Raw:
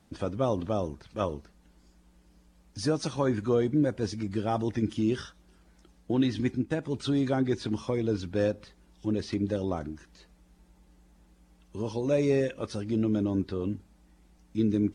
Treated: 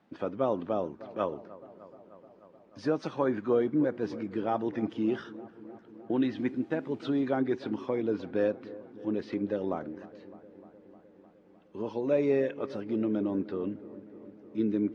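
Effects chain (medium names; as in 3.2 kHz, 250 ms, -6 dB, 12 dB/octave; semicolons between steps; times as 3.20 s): 6.38–7.17 s: word length cut 10-bit, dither triangular; band-pass 230–2400 Hz; on a send: feedback echo behind a low-pass 305 ms, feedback 73%, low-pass 1.4 kHz, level -17.5 dB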